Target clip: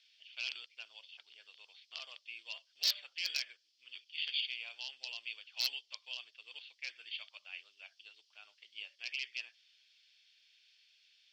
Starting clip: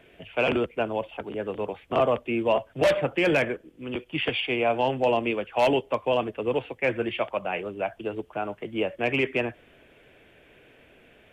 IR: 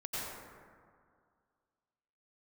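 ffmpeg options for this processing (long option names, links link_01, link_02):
-af "asuperpass=centerf=4800:order=4:qfactor=3.5,aeval=exprs='0.0168*(abs(mod(val(0)/0.0168+3,4)-2)-1)':channel_layout=same,volume=14.5dB"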